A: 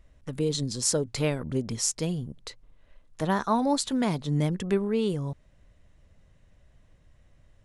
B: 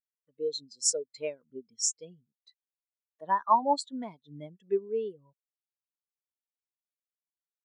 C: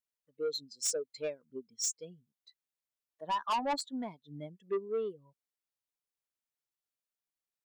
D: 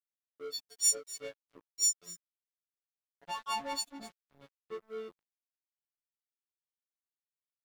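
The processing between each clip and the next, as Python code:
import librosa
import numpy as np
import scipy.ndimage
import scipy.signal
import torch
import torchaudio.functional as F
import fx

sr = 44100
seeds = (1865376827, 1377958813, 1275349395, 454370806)

y1 = fx.highpass(x, sr, hz=1300.0, slope=6)
y1 = fx.spectral_expand(y1, sr, expansion=2.5)
y2 = 10.0 ** (-27.5 / 20.0) * np.tanh(y1 / 10.0 ** (-27.5 / 20.0))
y3 = fx.freq_snap(y2, sr, grid_st=4)
y3 = y3 + 10.0 ** (-16.0 / 20.0) * np.pad(y3, (int(250 * sr / 1000.0), 0))[:len(y3)]
y3 = np.sign(y3) * np.maximum(np.abs(y3) - 10.0 ** (-42.0 / 20.0), 0.0)
y3 = y3 * 10.0 ** (-5.0 / 20.0)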